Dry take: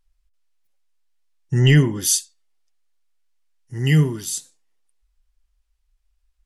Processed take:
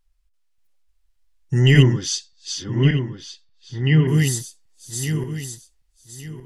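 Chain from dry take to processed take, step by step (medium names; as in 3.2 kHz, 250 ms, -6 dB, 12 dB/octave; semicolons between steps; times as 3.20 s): backward echo that repeats 582 ms, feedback 51%, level -2.5 dB; 1.83–4.07 s: low-pass 6 kHz -> 3.5 kHz 24 dB/octave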